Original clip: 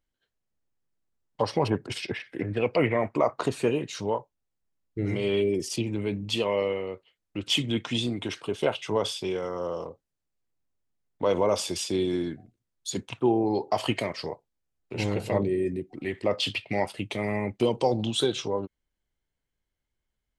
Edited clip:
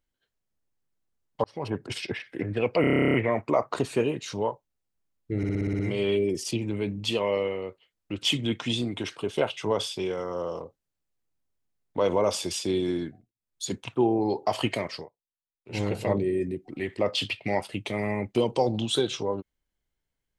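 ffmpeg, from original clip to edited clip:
-filter_complex "[0:a]asplit=24[a][b][c][d][e][f][g][h][i][j][k][l][m][n][o][p][q][r][s][t][u][v][w][x];[a]atrim=end=1.44,asetpts=PTS-STARTPTS,afade=t=out:st=1.436:d=0.004:c=hsin[y];[b]atrim=start=1.44:end=2.842,asetpts=PTS-STARTPTS,afade=t=in:d=0.47[z];[c]atrim=start=2.808:end=2.842[aa];[d]atrim=start=2.808:end=2.842[ab];[e]atrim=start=2.808:end=2.842[ac];[f]atrim=start=2.808:end=2.842[ad];[g]atrim=start=2.808:end=2.842[ae];[h]atrim=start=2.808:end=2.842[af];[i]atrim=start=2.808:end=2.842[ag];[j]atrim=start=2.808:end=2.842[ah];[k]atrim=start=2.808:end=2.842[ai];[l]atrim=start=2.808:end=2.842[aj];[m]atrim=start=2.808:end=5.102[ak];[n]atrim=start=5.038:end=5.102[al];[o]atrim=start=5.038:end=5.102[am];[p]atrim=start=5.038:end=5.102[an];[q]atrim=start=5.038:end=5.102[ao];[r]atrim=start=5.038:end=5.102[ap];[s]atrim=start=5.038:end=5.102[aq];[t]atrim=start=5.038:end=12.58,asetpts=PTS-STARTPTS,afade=t=out:st=7.262:d=0.28:silence=0.0944061[ar];[u]atrim=start=12.58:end=12.6,asetpts=PTS-STARTPTS,volume=-20.5dB[as];[v]atrim=start=12.6:end=14.34,asetpts=PTS-STARTPTS,afade=t=in:d=0.28:silence=0.0944061,afade=t=out:st=1.58:d=0.16:silence=0.0794328[at];[w]atrim=start=14.34:end=14.9,asetpts=PTS-STARTPTS,volume=-22dB[au];[x]atrim=start=14.9,asetpts=PTS-STARTPTS,afade=t=in:d=0.16:silence=0.0794328[av];[y][z]concat=n=2:v=0:a=1[aw];[aw][aa]acrossfade=d=0.004:c1=hsin:c2=hsin[ax];[ax][ab]acrossfade=d=0.004:c1=hsin:c2=hsin[ay];[ay][ac]acrossfade=d=0.004:c1=hsin:c2=hsin[az];[az][ad]acrossfade=d=0.004:c1=hsin:c2=hsin[ba];[ba][ae]acrossfade=d=0.004:c1=hsin:c2=hsin[bb];[bb][af]acrossfade=d=0.004:c1=hsin:c2=hsin[bc];[bc][ag]acrossfade=d=0.004:c1=hsin:c2=hsin[bd];[bd][ah]acrossfade=d=0.004:c1=hsin:c2=hsin[be];[be][ai]acrossfade=d=0.004:c1=hsin:c2=hsin[bf];[bf][aj]acrossfade=d=0.004:c1=hsin:c2=hsin[bg];[bg][ak]acrossfade=d=0.004:c1=hsin:c2=hsin[bh];[bh][al]acrossfade=d=0.004:c1=hsin:c2=hsin[bi];[bi][am]acrossfade=d=0.004:c1=hsin:c2=hsin[bj];[bj][an]acrossfade=d=0.004:c1=hsin:c2=hsin[bk];[bk][ao]acrossfade=d=0.004:c1=hsin:c2=hsin[bl];[bl][ap]acrossfade=d=0.004:c1=hsin:c2=hsin[bm];[bm][aq]acrossfade=d=0.004:c1=hsin:c2=hsin[bn];[ar][as][at][au][av]concat=n=5:v=0:a=1[bo];[bn][bo]acrossfade=d=0.004:c1=hsin:c2=hsin"

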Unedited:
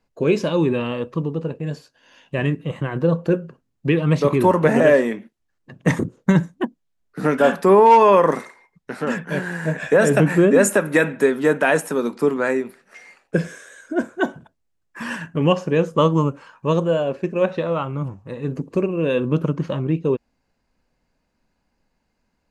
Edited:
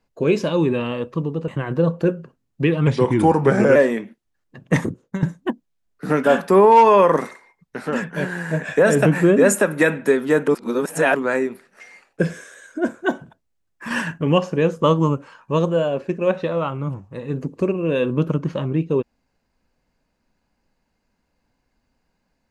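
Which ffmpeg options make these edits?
-filter_complex "[0:a]asplit=9[a][b][c][d][e][f][g][h][i];[a]atrim=end=1.482[j];[b]atrim=start=2.728:end=4.124[k];[c]atrim=start=4.12:end=4.9,asetpts=PTS-STARTPTS,asetrate=38808,aresample=44100[l];[d]atrim=start=4.896:end=6.37,asetpts=PTS-STARTPTS,afade=t=out:st=1.004:d=0.47:silence=0.177828[m];[e]atrim=start=6.37:end=11.622,asetpts=PTS-STARTPTS,afade=t=in:d=0.004:c=hsin:silence=0.177828[n];[f]atrim=start=11.618:end=12.292,asetpts=PTS-STARTPTS,areverse[o];[g]atrim=start=12.288:end=15.052[p];[h]atrim=start=15.048:end=15.322,asetpts=PTS-STARTPTS,volume=5dB[q];[i]atrim=start=15.318[r];[j][k]acrossfade=d=0.004:c1=hsin:c2=hsin[s];[s][l]acrossfade=d=0.004:c1=hsin:c2=hsin[t];[m][n]concat=n=2:v=0:a=1[u];[t][u]acrossfade=d=0.004:c1=hsin:c2=hsin[v];[v][o]acrossfade=d=0.004:c1=hsin:c2=hsin[w];[w][p]acrossfade=d=0.004:c1=hsin:c2=hsin[x];[x][q]acrossfade=d=0.004:c1=hsin:c2=hsin[y];[y][r]acrossfade=d=0.004:c1=hsin:c2=hsin"

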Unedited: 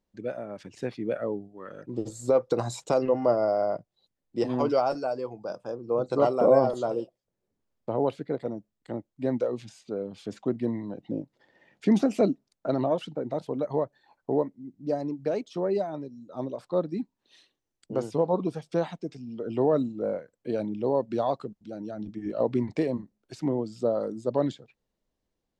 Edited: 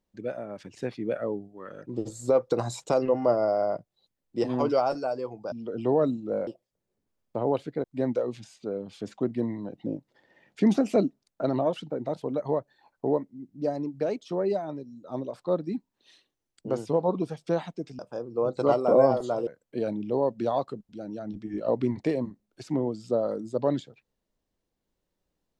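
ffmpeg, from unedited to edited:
-filter_complex "[0:a]asplit=6[a][b][c][d][e][f];[a]atrim=end=5.522[g];[b]atrim=start=19.238:end=20.192[h];[c]atrim=start=6.998:end=8.372[i];[d]atrim=start=9.088:end=19.242[j];[e]atrim=start=5.518:end=7.002[k];[f]atrim=start=20.188[l];[g][h]acrossfade=d=0.004:c1=hsin:c2=hsin[m];[m][i]acrossfade=d=0.004:c1=hsin:c2=hsin[n];[n][j]acrossfade=d=0.004:c1=hsin:c2=hsin[o];[o][k]acrossfade=d=0.004:c1=hsin:c2=hsin[p];[p][l]acrossfade=d=0.004:c1=hsin:c2=hsin"

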